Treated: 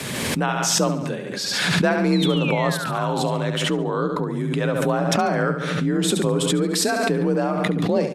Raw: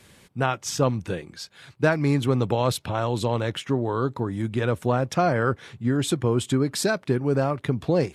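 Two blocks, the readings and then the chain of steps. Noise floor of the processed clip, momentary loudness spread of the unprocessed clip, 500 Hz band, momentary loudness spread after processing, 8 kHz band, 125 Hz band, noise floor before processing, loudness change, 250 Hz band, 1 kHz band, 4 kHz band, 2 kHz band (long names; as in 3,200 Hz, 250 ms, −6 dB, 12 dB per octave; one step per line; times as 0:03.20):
−28 dBFS, 6 LU, +2.5 dB, 5 LU, +8.5 dB, +0.5 dB, −55 dBFS, +3.5 dB, +4.0 dB, +3.5 dB, +9.0 dB, +5.5 dB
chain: sound drawn into the spectrogram fall, 0:02.12–0:03.38, 550–4,300 Hz −33 dBFS
frequency shifter +41 Hz
on a send: repeating echo 71 ms, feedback 47%, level −8 dB
on the sum: background raised ahead of every attack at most 25 dB per second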